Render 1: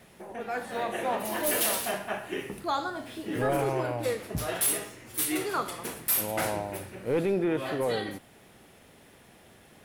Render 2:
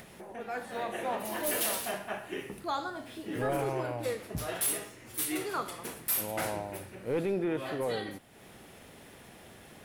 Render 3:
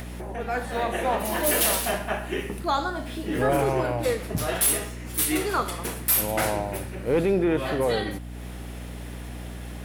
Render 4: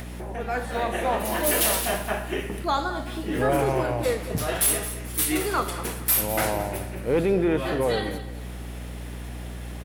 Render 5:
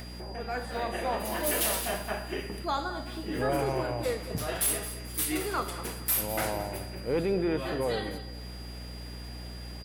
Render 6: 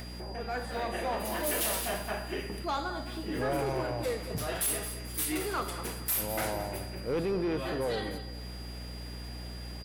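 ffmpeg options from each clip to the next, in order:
-af "acompressor=mode=upward:threshold=0.0112:ratio=2.5,volume=0.631"
-af "aeval=exprs='val(0)+0.00631*(sin(2*PI*60*n/s)+sin(2*PI*2*60*n/s)/2+sin(2*PI*3*60*n/s)/3+sin(2*PI*4*60*n/s)/4+sin(2*PI*5*60*n/s)/5)':c=same,volume=2.66"
-af "aecho=1:1:218|436|654:0.2|0.0579|0.0168"
-af "aeval=exprs='val(0)+0.00794*sin(2*PI*4800*n/s)':c=same,volume=0.501"
-af "asoftclip=type=tanh:threshold=0.0596"

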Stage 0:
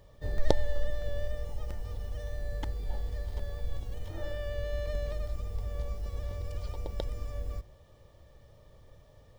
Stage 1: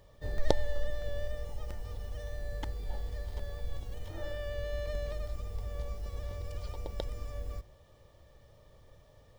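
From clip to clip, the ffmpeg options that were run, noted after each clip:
-af "lowshelf=f=430:g=-3"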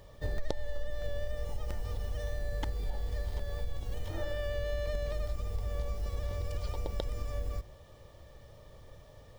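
-af "acompressor=threshold=0.0178:ratio=4,volume=1.88"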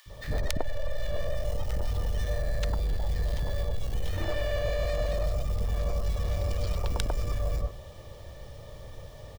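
-filter_complex "[0:a]aeval=exprs='0.2*(cos(1*acos(clip(val(0)/0.2,-1,1)))-cos(1*PI/2))+0.0794*(cos(7*acos(clip(val(0)/0.2,-1,1)))-cos(7*PI/2))':c=same,acrossover=split=290|1300[s0][s1][s2];[s0]adelay=60[s3];[s1]adelay=100[s4];[s3][s4][s2]amix=inputs=3:normalize=0,volume=1.68"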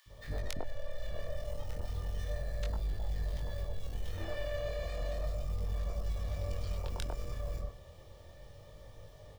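-af "flanger=delay=19.5:depth=6.1:speed=0.33,volume=0.531"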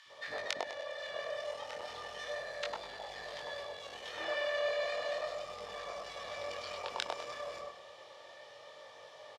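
-filter_complex "[0:a]highpass=740,lowpass=4800,asplit=2[s0][s1];[s1]aecho=0:1:101|202|303|404|505:0.282|0.135|0.0649|0.0312|0.015[s2];[s0][s2]amix=inputs=2:normalize=0,volume=2.99"

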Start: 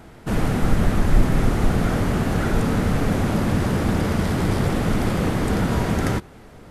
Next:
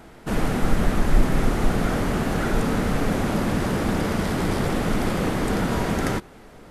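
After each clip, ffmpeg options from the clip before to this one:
-af "equalizer=f=92:w=0.87:g=-7"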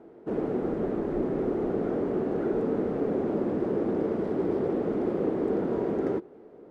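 -af "bandpass=f=390:t=q:w=2.7:csg=0,volume=1.5"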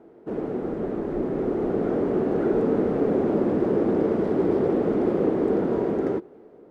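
-af "dynaudnorm=f=640:g=5:m=1.88"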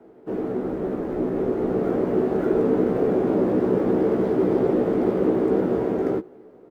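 -filter_complex "[0:a]asplit=2[s0][s1];[s1]adelay=16,volume=0.631[s2];[s0][s2]amix=inputs=2:normalize=0,acrossover=split=200|540|1600[s3][s4][s5][s6];[s6]acrusher=bits=3:mode=log:mix=0:aa=0.000001[s7];[s3][s4][s5][s7]amix=inputs=4:normalize=0"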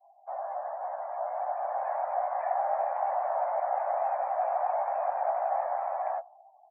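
-af "highpass=f=240:t=q:w=0.5412,highpass=f=240:t=q:w=1.307,lowpass=f=3100:t=q:w=0.5176,lowpass=f=3100:t=q:w=0.7071,lowpass=f=3100:t=q:w=1.932,afreqshift=350,afftdn=nr=35:nf=-42,volume=0.398"

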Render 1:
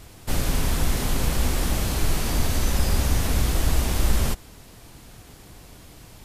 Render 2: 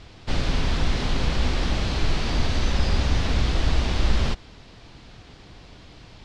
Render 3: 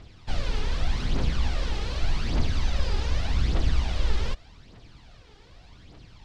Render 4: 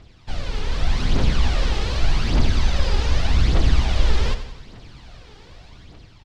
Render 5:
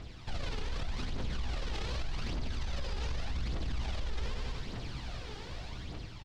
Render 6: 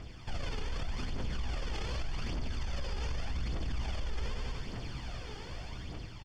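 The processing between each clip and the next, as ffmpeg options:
-af "lowpass=f=4400:w=0.5412,lowpass=f=4400:w=1.3066,aemphasis=mode=production:type=50kf"
-af "aphaser=in_gain=1:out_gain=1:delay=2.5:decay=0.53:speed=0.84:type=triangular,volume=0.422"
-filter_complex "[0:a]dynaudnorm=f=230:g=7:m=2.37,asplit=2[s0][s1];[s1]aecho=0:1:90|180|270|360|450:0.282|0.144|0.0733|0.0374|0.0191[s2];[s0][s2]amix=inputs=2:normalize=0"
-filter_complex "[0:a]acompressor=threshold=0.0631:ratio=6,alimiter=level_in=2:limit=0.0631:level=0:latency=1:release=26,volume=0.501,asplit=2[s0][s1];[s1]adelay=16,volume=0.2[s2];[s0][s2]amix=inputs=2:normalize=0,volume=1.19"
-af "asuperstop=centerf=3900:order=12:qfactor=7.7"

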